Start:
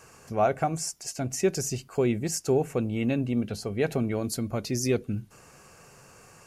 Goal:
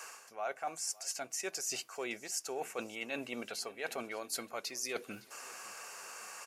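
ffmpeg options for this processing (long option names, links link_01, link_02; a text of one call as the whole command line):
ffmpeg -i in.wav -af "highpass=840,areverse,acompressor=threshold=-44dB:ratio=6,areverse,aecho=1:1:561|1122|1683|2244:0.0841|0.0421|0.021|0.0105,volume=7.5dB" out.wav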